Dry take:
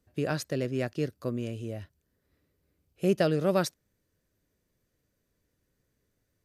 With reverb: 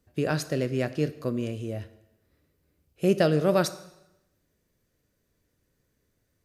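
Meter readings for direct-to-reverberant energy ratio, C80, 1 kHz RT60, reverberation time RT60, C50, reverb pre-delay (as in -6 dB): 12.0 dB, 17.0 dB, 0.90 s, 0.90 s, 15.0 dB, 6 ms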